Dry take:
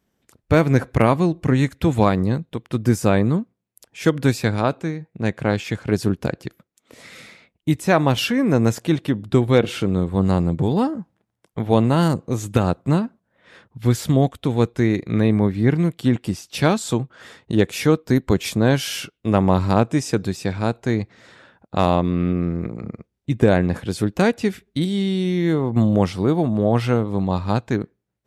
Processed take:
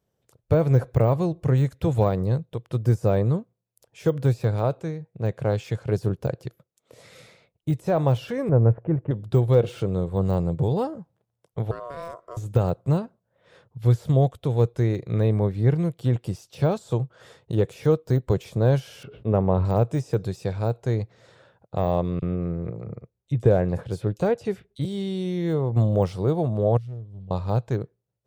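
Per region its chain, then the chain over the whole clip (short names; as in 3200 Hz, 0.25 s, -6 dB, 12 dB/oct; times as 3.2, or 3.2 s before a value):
8.49–9.11 Bessel low-pass 1200 Hz, order 8 + low shelf 71 Hz +11 dB
11.71–12.37 HPF 140 Hz + compressor 2:1, threshold -34 dBFS + ring modulator 840 Hz
19.03–19.65 air absorption 410 m + small resonant body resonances 230/420/3800 Hz, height 6 dB, ringing for 75 ms + sustainer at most 52 dB/s
22.19–24.85 high shelf 6300 Hz -7.5 dB + bands offset in time highs, lows 30 ms, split 3800 Hz
26.77–27.31 passive tone stack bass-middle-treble 10-0-1 + Doppler distortion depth 0.34 ms
whole clip: de-esser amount 85%; graphic EQ 125/250/500/2000 Hz +9/-9/+8/-5 dB; gain -6.5 dB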